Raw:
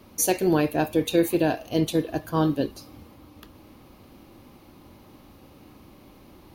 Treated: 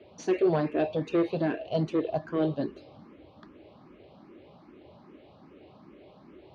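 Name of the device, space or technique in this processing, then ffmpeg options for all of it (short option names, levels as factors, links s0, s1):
barber-pole phaser into a guitar amplifier: -filter_complex "[0:a]asplit=2[s0][s1];[s1]afreqshift=2.5[s2];[s0][s2]amix=inputs=2:normalize=1,asoftclip=type=tanh:threshold=0.0841,highpass=82,equalizer=f=100:t=q:w=4:g=-5,equalizer=f=170:t=q:w=4:g=4,equalizer=f=400:t=q:w=4:g=8,equalizer=f=630:t=q:w=4:g=8,lowpass=f=4000:w=0.5412,lowpass=f=4000:w=1.3066,volume=0.841"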